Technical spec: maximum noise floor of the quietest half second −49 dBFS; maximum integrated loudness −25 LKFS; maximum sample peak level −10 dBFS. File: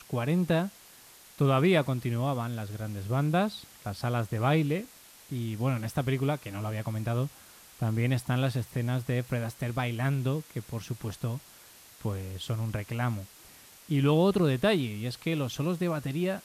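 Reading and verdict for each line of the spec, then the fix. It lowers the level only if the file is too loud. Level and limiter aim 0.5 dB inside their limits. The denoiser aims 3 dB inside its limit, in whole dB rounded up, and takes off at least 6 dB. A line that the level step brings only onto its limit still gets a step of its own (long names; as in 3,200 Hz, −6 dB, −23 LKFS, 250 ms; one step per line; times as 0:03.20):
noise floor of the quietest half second −53 dBFS: in spec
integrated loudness −30.0 LKFS: in spec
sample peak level −13.5 dBFS: in spec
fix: no processing needed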